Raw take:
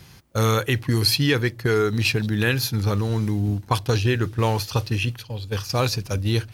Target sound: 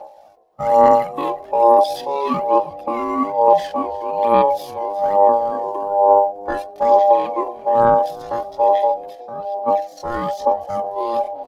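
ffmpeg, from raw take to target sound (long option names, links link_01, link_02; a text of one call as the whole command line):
ffmpeg -i in.wav -filter_complex "[0:a]tiltshelf=frequency=660:gain=9.5,aphaser=in_gain=1:out_gain=1:delay=3:decay=0.67:speed=2:type=sinusoidal,aeval=exprs='val(0)*sin(2*PI*700*n/s)':channel_layout=same,atempo=0.57,asplit=2[link_01][link_02];[link_02]asplit=3[link_03][link_04][link_05];[link_03]adelay=362,afreqshift=-95,volume=-20.5dB[link_06];[link_04]adelay=724,afreqshift=-190,volume=-28dB[link_07];[link_05]adelay=1086,afreqshift=-285,volume=-35.6dB[link_08];[link_06][link_07][link_08]amix=inputs=3:normalize=0[link_09];[link_01][link_09]amix=inputs=2:normalize=0,volume=-4.5dB" out.wav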